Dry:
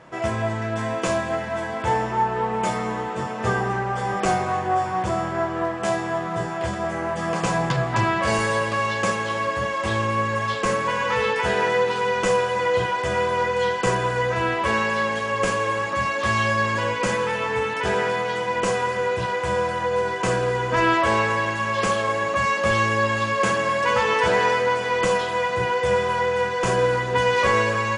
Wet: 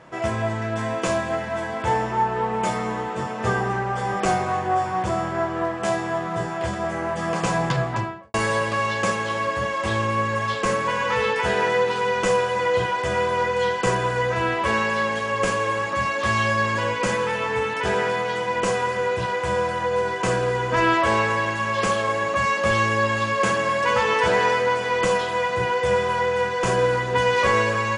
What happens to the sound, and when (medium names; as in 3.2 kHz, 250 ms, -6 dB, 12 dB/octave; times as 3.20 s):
7.76–8.34 s: studio fade out